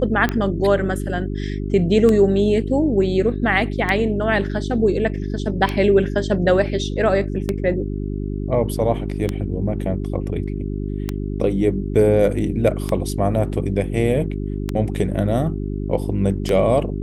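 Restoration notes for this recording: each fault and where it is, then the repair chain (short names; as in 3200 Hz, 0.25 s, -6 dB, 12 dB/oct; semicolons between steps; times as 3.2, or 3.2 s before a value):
hum 50 Hz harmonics 8 -25 dBFS
tick 33 1/3 rpm -8 dBFS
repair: de-click; de-hum 50 Hz, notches 8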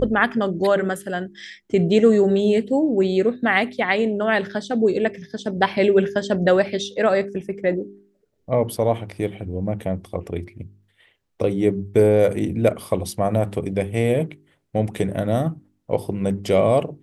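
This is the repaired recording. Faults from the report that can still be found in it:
none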